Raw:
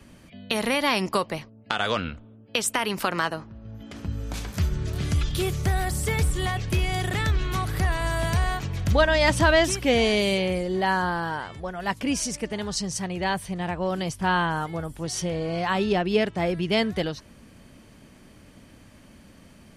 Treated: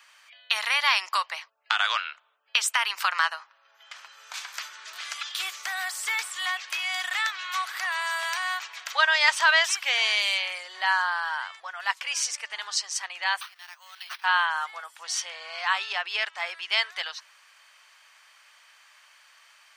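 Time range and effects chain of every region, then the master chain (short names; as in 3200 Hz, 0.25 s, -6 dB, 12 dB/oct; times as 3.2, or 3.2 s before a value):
13.41–14.24 differentiator + careless resampling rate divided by 6×, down none, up hold
whole clip: inverse Chebyshev high-pass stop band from 230 Hz, stop band 70 dB; bell 11000 Hz -12.5 dB 0.54 oct; gain +4 dB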